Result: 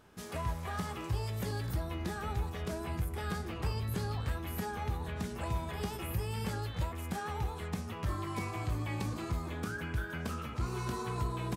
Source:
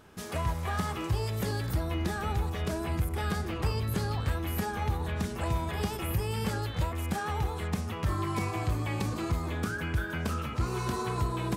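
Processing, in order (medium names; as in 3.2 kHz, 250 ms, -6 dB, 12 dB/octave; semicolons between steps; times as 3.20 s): doubling 17 ms -11 dB; trim -5.5 dB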